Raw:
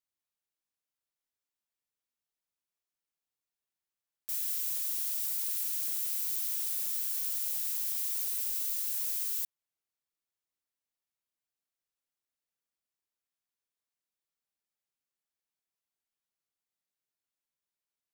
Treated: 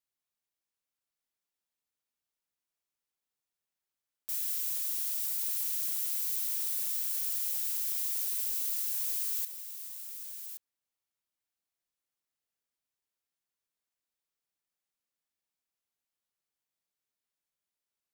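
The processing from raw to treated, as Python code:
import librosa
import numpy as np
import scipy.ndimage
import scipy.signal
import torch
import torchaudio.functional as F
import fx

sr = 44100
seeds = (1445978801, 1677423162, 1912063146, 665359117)

y = x + 10.0 ** (-9.5 / 20.0) * np.pad(x, (int(1122 * sr / 1000.0), 0))[:len(x)]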